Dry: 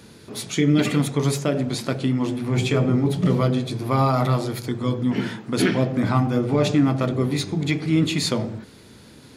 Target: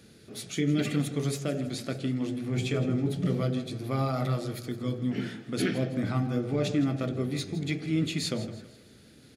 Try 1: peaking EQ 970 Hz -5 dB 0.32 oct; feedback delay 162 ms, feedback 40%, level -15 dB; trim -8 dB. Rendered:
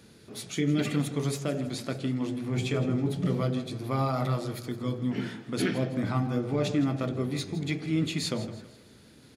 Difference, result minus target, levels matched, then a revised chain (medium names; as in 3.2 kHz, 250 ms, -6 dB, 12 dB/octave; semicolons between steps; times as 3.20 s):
1 kHz band +2.5 dB
peaking EQ 970 Hz -15 dB 0.32 oct; feedback delay 162 ms, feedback 40%, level -15 dB; trim -8 dB